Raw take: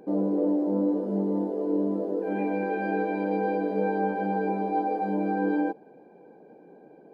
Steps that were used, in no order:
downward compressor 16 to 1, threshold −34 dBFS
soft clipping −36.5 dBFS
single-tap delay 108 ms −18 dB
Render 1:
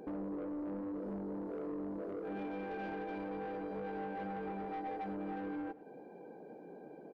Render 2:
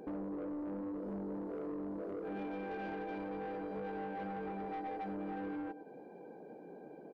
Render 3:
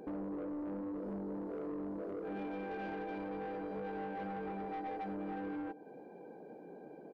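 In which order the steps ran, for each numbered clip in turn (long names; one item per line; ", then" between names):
downward compressor, then soft clipping, then single-tap delay
single-tap delay, then downward compressor, then soft clipping
downward compressor, then single-tap delay, then soft clipping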